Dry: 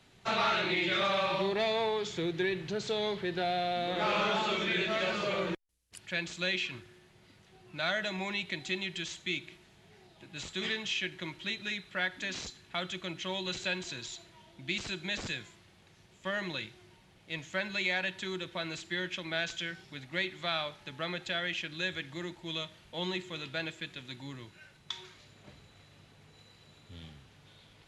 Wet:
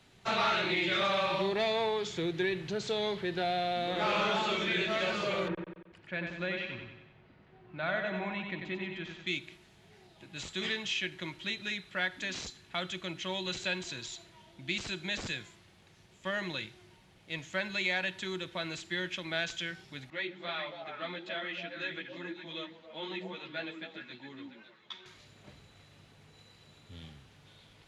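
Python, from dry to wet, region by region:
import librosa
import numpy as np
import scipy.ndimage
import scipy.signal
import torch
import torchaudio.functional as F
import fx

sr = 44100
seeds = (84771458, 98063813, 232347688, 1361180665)

y = fx.chain(x, sr, fx.lowpass(hz=1900.0, slope=12),
    fx.echo_feedback(ms=93, feedback_pct=52, wet_db=-5.0), at=(5.48, 9.27))
y = fx.chain(y, sr, fx.bandpass_edges(low_hz=190.0, high_hz=3600.0),
    fx.echo_stepped(ms=138, hz=240.0, octaves=1.4, feedback_pct=70, wet_db=0),
    fx.ensemble(), at=(20.1, 25.06))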